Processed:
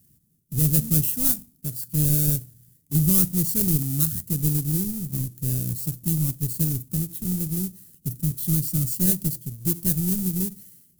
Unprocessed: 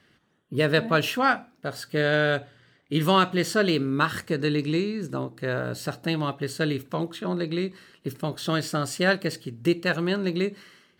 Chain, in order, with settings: square wave that keeps the level; FFT filter 160 Hz 0 dB, 770 Hz -29 dB, 1.6 kHz -28 dB, 3.5 kHz -18 dB, 12 kHz +11 dB

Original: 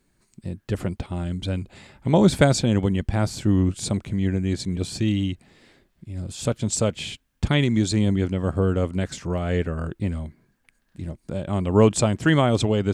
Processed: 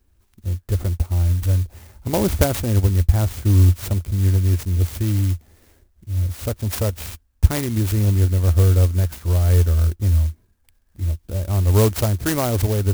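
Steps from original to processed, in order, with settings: resonant low shelf 110 Hz +9.5 dB, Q 3; sampling jitter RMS 0.099 ms; trim -1 dB

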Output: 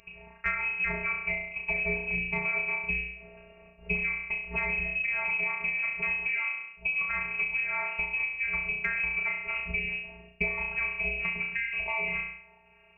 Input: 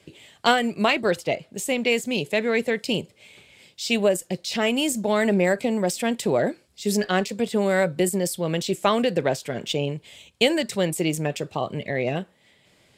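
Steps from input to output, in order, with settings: on a send: flutter echo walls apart 5.8 m, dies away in 0.52 s; on the sum: robot voice 239 Hz; frequency inversion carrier 2.8 kHz; compression, threshold -27 dBFS, peak gain reduction 15 dB; bass shelf 180 Hz +4.5 dB

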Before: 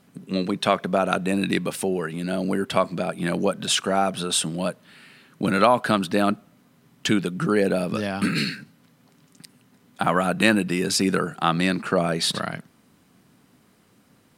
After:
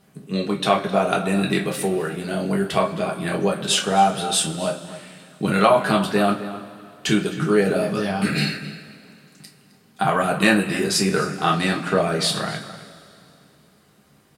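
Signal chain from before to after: echo from a far wall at 45 m, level -14 dB; two-slope reverb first 0.23 s, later 2.7 s, from -22 dB, DRR -1 dB; trim -1.5 dB

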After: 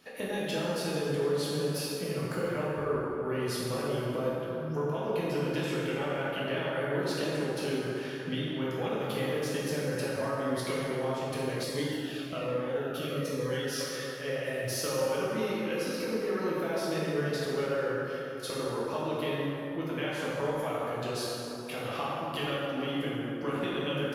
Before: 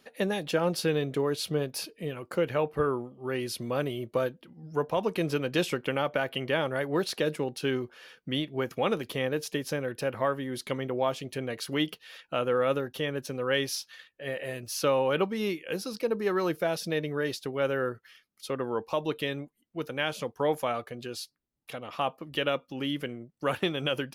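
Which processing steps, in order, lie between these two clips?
compression 6:1, threshold -37 dBFS, peak gain reduction 15 dB; plate-style reverb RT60 3.7 s, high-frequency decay 0.45×, DRR -8 dB; 11.63–13.81 s: Shepard-style phaser falling 1.2 Hz

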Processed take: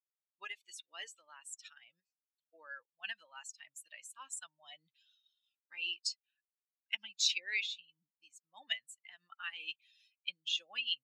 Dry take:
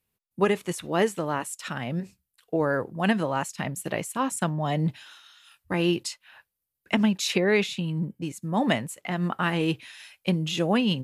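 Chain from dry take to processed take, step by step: expander on every frequency bin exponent 2; Butterworth band-pass 4.2 kHz, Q 1; trim +1.5 dB

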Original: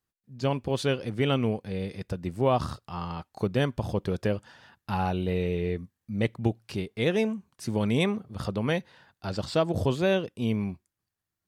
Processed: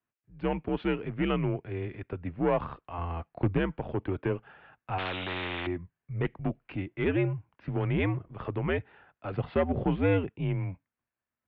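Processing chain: 2.98–3.58 s: bass shelf 230 Hz +11 dB; Chebyshev shaper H 2 -15 dB, 5 -21 dB, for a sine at -11.5 dBFS; 9.33–10.29 s: small resonant body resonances 220/840/2100 Hz, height 8 dB; mistuned SSB -87 Hz 180–2800 Hz; 4.98–5.67 s: spectrum-flattening compressor 4:1; trim -3 dB

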